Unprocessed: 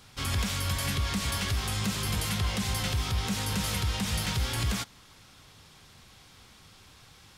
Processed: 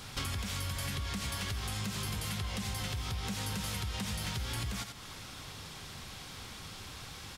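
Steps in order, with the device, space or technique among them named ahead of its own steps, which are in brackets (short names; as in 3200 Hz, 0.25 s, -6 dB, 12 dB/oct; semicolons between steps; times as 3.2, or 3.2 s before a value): echo 85 ms -12.5 dB; serial compression, leveller first (compressor 2:1, threshold -32 dBFS, peak gain reduction 5 dB; compressor 5:1, threshold -43 dBFS, peak gain reduction 13 dB); gain +8 dB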